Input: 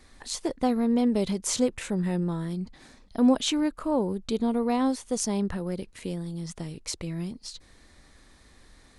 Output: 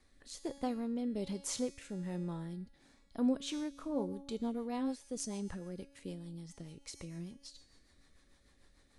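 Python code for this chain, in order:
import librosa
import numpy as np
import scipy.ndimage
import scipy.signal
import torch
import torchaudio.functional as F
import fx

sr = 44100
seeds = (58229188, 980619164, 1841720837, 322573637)

y = fx.comb_fb(x, sr, f0_hz=280.0, decay_s=1.2, harmonics='all', damping=0.0, mix_pct=80)
y = fx.rotary_switch(y, sr, hz=1.2, then_hz=6.7, switch_at_s=3.17)
y = F.gain(torch.from_numpy(y), 3.0).numpy()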